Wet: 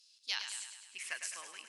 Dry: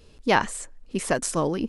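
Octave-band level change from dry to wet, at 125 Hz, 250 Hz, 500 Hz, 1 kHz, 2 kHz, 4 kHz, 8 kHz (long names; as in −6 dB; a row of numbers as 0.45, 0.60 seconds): below −40 dB, below −40 dB, −35.5 dB, −27.0 dB, −13.0 dB, −4.0 dB, −10.0 dB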